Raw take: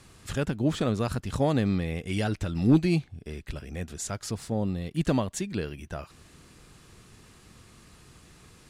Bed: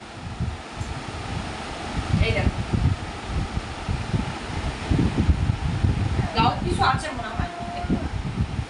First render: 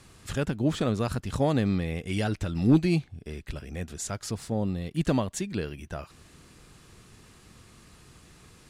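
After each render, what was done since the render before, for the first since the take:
no processing that can be heard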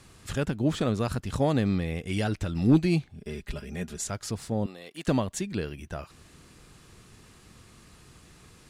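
0:03.09–0:04.04: comb filter 4.9 ms, depth 74%
0:04.66–0:05.08: high-pass filter 520 Hz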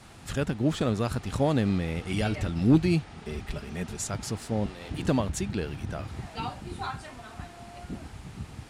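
mix in bed −14.5 dB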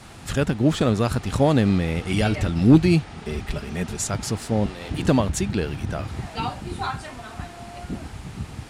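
level +6.5 dB

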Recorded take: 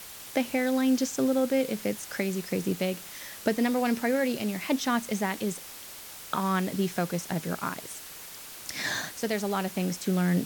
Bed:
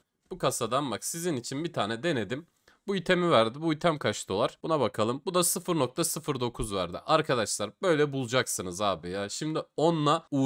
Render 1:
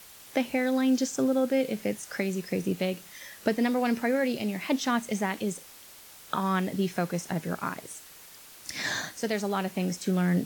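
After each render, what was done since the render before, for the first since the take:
noise reduction from a noise print 6 dB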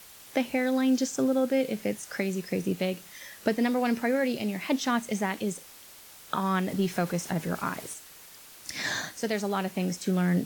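0:06.68–0:07.94: mu-law and A-law mismatch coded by mu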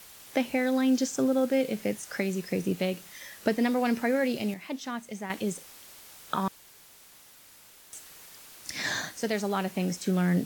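0:01.38–0:02.06: floating-point word with a short mantissa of 4 bits
0:04.54–0:05.30: clip gain −8.5 dB
0:06.48–0:07.93: fill with room tone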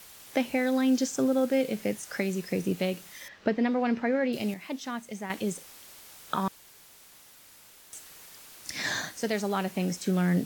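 0:03.28–0:04.33: high-frequency loss of the air 200 metres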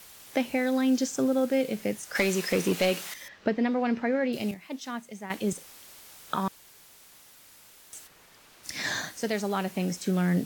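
0:02.15–0:03.14: mid-hump overdrive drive 18 dB, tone 7,900 Hz, clips at −13 dBFS
0:04.51–0:05.53: multiband upward and downward expander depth 70%
0:08.06–0:08.63: high-shelf EQ 3,200 Hz → 5,700 Hz −11.5 dB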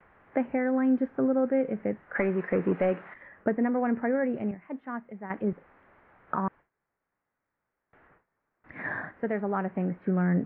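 noise gate with hold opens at −41 dBFS
Butterworth low-pass 1,900 Hz 36 dB per octave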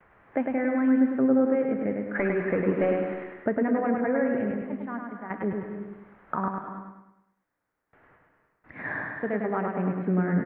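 repeating echo 103 ms, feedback 45%, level −4 dB
reverb whose tail is shaped and stops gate 350 ms rising, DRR 8.5 dB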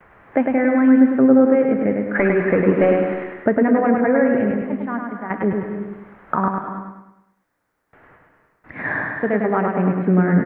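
level +9 dB

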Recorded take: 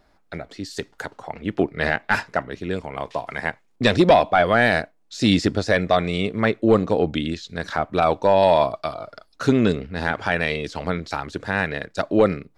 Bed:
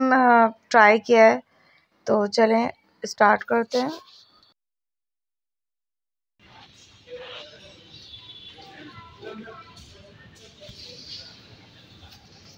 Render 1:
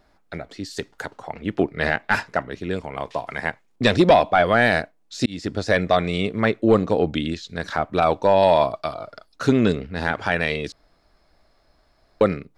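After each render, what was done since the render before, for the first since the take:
0:05.26–0:05.72: fade in
0:10.72–0:12.21: fill with room tone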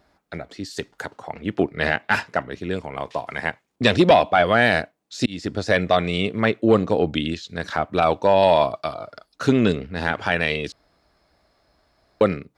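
high-pass filter 54 Hz
dynamic equaliser 2,900 Hz, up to +5 dB, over −42 dBFS, Q 3.3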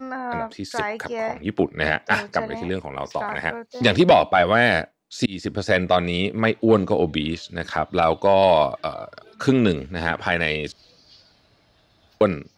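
mix in bed −12.5 dB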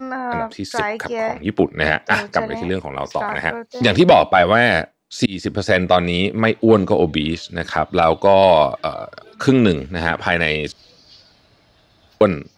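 level +4.5 dB
brickwall limiter −2 dBFS, peak gain reduction 3 dB

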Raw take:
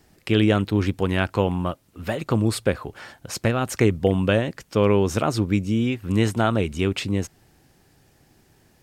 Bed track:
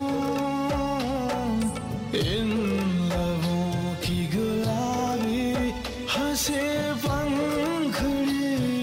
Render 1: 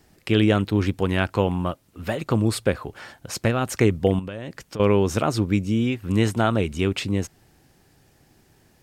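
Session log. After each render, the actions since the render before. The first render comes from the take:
0:04.19–0:04.80: downward compressor 8 to 1, threshold −29 dBFS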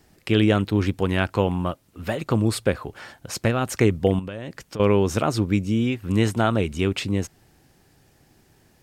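no processing that can be heard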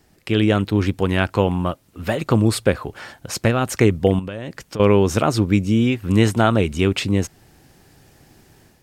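automatic gain control gain up to 7 dB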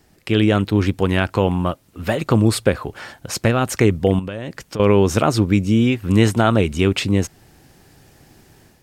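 level +1.5 dB
brickwall limiter −3 dBFS, peak gain reduction 3 dB

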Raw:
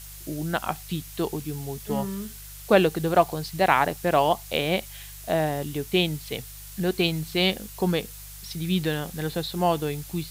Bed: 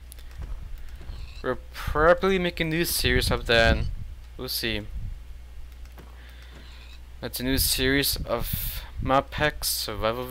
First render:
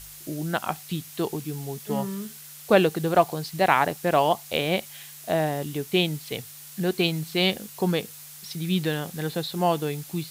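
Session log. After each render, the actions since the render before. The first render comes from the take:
hum removal 50 Hz, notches 2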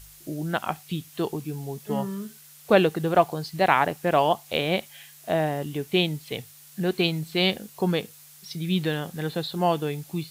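noise reduction from a noise print 6 dB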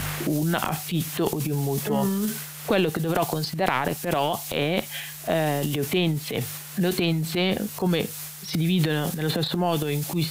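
transient designer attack −8 dB, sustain +11 dB
multiband upward and downward compressor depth 100%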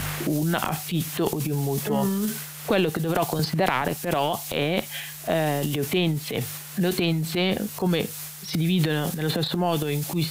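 0:03.39–0:03.82: multiband upward and downward compressor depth 70%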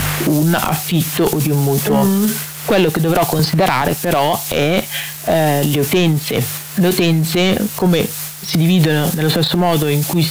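leveller curve on the samples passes 3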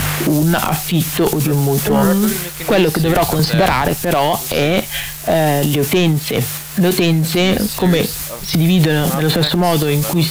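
mix in bed −3.5 dB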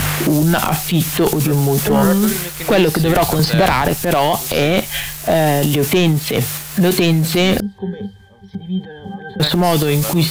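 0:07.60–0:09.40: resonances in every octave G, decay 0.16 s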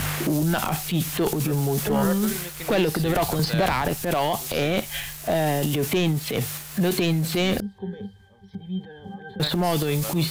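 level −8.5 dB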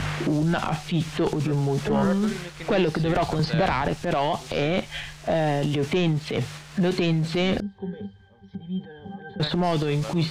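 high-frequency loss of the air 110 metres

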